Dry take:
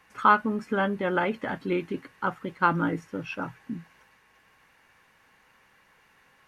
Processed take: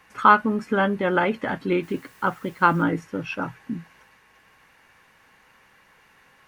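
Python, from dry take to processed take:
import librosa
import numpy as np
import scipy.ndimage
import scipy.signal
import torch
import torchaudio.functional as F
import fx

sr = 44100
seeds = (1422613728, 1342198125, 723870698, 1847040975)

y = fx.dmg_noise_colour(x, sr, seeds[0], colour='white', level_db=-62.0, at=(1.82, 2.82), fade=0.02)
y = y * librosa.db_to_amplitude(4.5)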